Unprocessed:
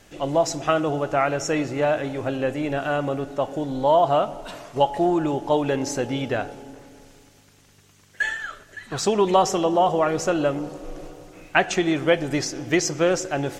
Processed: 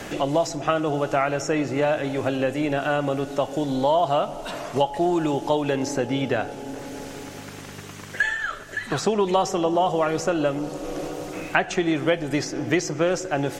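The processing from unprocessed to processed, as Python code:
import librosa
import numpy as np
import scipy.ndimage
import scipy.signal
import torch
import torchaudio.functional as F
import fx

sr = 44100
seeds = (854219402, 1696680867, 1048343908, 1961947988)

y = fx.band_squash(x, sr, depth_pct=70)
y = F.gain(torch.from_numpy(y), -1.0).numpy()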